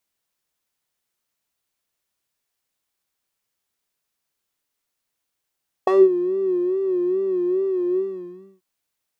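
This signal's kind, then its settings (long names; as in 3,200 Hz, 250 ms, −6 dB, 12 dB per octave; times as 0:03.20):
subtractive patch with vibrato F#4, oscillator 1 square, interval −12 semitones, detune 10 cents, oscillator 2 level −7 dB, filter bandpass, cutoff 200 Hz, Q 5.5, filter envelope 2 octaves, filter decay 0.15 s, filter sustain 45%, attack 5.5 ms, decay 0.21 s, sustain −20 dB, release 0.64 s, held 2.10 s, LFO 2.4 Hz, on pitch 85 cents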